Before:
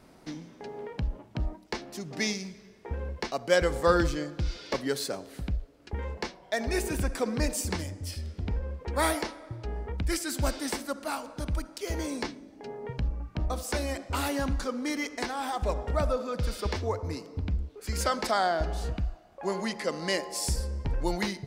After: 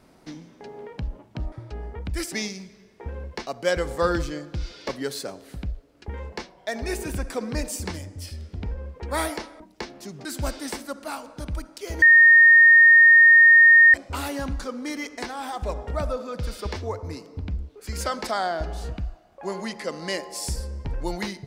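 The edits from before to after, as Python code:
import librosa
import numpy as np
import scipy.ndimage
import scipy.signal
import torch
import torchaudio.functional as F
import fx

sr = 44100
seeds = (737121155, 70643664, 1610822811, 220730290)

y = fx.edit(x, sr, fx.swap(start_s=1.52, length_s=0.65, other_s=9.45, other_length_s=0.8),
    fx.bleep(start_s=12.02, length_s=1.92, hz=1840.0, db=-9.0), tone=tone)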